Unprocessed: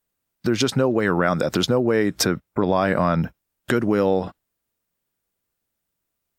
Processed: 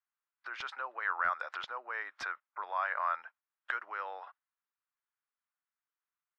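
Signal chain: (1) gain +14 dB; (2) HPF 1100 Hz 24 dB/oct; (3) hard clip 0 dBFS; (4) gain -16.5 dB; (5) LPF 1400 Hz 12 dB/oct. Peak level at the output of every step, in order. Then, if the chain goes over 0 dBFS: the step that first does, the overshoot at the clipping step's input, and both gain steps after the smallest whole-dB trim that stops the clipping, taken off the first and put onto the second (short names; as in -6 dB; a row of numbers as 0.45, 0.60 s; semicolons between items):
+8.0, +6.5, 0.0, -16.5, -19.0 dBFS; step 1, 6.5 dB; step 1 +7 dB, step 4 -9.5 dB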